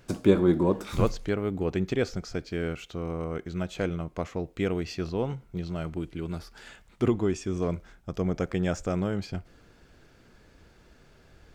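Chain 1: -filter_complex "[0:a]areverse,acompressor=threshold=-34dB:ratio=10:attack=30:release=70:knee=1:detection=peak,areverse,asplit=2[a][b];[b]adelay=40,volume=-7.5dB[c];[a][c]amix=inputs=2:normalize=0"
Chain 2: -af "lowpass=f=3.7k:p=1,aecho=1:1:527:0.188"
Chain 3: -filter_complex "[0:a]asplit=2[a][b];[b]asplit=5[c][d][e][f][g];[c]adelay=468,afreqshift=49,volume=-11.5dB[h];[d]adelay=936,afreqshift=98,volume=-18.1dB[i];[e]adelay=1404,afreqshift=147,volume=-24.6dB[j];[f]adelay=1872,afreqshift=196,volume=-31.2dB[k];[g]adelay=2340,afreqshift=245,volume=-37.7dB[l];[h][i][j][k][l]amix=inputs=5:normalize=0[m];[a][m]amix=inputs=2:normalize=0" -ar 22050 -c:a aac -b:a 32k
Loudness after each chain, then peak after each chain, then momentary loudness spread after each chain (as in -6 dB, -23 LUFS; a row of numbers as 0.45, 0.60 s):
-35.5, -29.5, -29.5 LUFS; -20.0, -6.5, -6.0 dBFS; 5, 12, 14 LU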